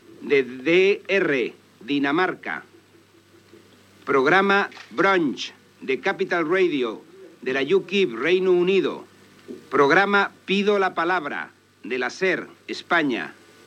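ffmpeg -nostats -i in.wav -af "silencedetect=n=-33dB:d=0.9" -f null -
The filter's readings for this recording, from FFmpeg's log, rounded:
silence_start: 2.60
silence_end: 4.07 | silence_duration: 1.47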